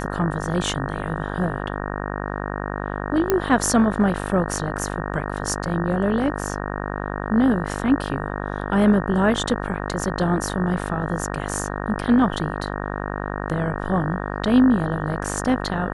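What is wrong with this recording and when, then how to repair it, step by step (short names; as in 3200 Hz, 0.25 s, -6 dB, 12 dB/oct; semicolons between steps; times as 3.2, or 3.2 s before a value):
buzz 50 Hz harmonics 37 -28 dBFS
3.3 pop -5 dBFS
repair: de-click; de-hum 50 Hz, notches 37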